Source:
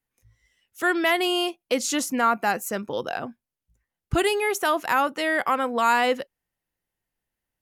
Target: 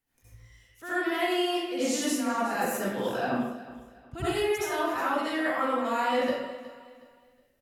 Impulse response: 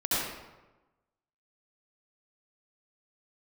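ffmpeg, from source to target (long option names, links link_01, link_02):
-filter_complex "[0:a]areverse,acompressor=threshold=-37dB:ratio=6,areverse,aecho=1:1:366|732|1098:0.158|0.0507|0.0162[link_01];[1:a]atrim=start_sample=2205,afade=type=out:start_time=0.39:duration=0.01,atrim=end_sample=17640[link_02];[link_01][link_02]afir=irnorm=-1:irlink=0"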